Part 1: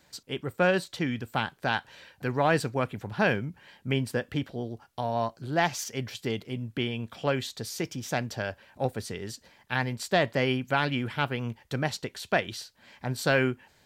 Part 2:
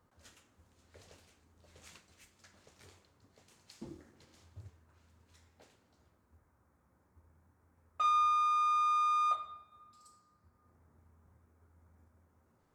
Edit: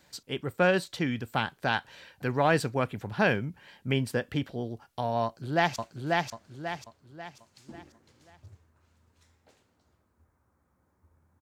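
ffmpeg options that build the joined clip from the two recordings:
-filter_complex "[0:a]apad=whole_dur=11.41,atrim=end=11.41,atrim=end=5.762[s0];[1:a]atrim=start=1.888:end=7.54[s1];[s0][s1]acrossfade=d=0.004:c1=hsin:c2=hsin,asplit=2[s2][s3];[s3]afade=t=in:st=5.24:d=0.01,afade=t=out:st=5.76:d=0.01,aecho=0:1:540|1080|1620|2160|2700:0.794328|0.317731|0.127093|0.050837|0.0203348[s4];[s2][s4]amix=inputs=2:normalize=0"

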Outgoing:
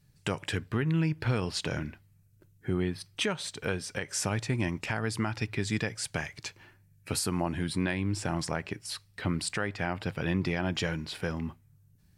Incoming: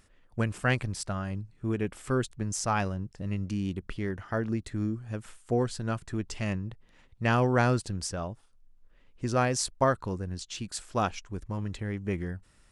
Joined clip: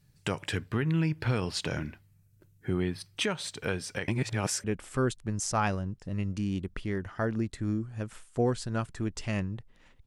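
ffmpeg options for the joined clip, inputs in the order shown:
-filter_complex "[0:a]apad=whole_dur=10.06,atrim=end=10.06,asplit=2[s0][s1];[s0]atrim=end=4.082[s2];[s1]atrim=start=4.078:end=4.642,asetpts=PTS-STARTPTS,areverse[s3];[1:a]atrim=start=1.768:end=7.19[s4];[s2][s3]acrossfade=d=0.004:c1=hsin:c2=hsin[s5];[s5][s4]acrossfade=d=0.004:c1=hsin:c2=hsin"

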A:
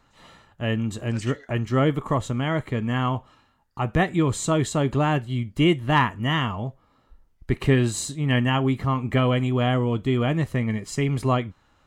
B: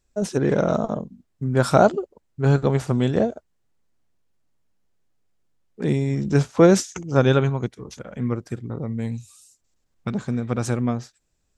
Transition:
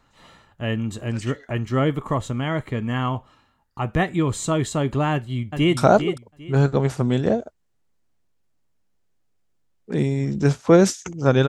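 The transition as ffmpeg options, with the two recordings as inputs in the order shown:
-filter_complex "[0:a]apad=whole_dur=11.48,atrim=end=11.48,atrim=end=5.772[s0];[1:a]atrim=start=1.668:end=7.38[s1];[s0][s1]acrossfade=d=0.004:c1=hsin:c2=hsin,asplit=2[s2][s3];[s3]afade=t=in:st=5.12:d=0.01,afade=t=out:st=5.77:d=0.01,aecho=0:1:400|800|1200:0.421697|0.0843393|0.0168679[s4];[s2][s4]amix=inputs=2:normalize=0"

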